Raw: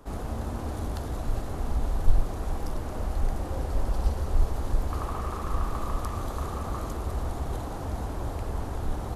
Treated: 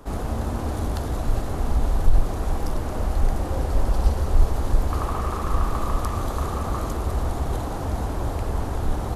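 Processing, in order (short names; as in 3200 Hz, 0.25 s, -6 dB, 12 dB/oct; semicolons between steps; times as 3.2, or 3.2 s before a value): maximiser +11 dB; gain -5 dB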